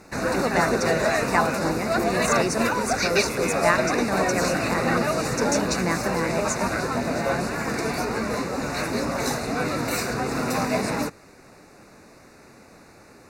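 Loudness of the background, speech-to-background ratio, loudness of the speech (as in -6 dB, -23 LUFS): -24.5 LUFS, -3.5 dB, -28.0 LUFS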